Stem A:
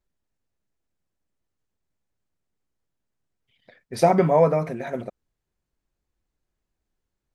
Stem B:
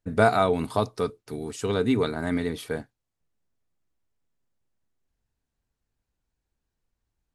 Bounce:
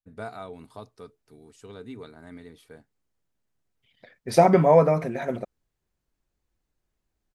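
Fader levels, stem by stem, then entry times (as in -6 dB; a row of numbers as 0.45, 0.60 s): +1.0, -17.5 dB; 0.35, 0.00 s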